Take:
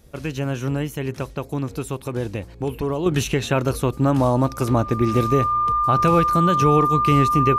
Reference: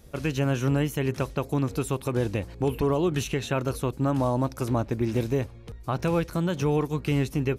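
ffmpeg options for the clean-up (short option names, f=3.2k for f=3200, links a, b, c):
-af "bandreject=f=1.2k:w=30,asetnsamples=n=441:p=0,asendcmd='3.06 volume volume -6.5dB',volume=0dB"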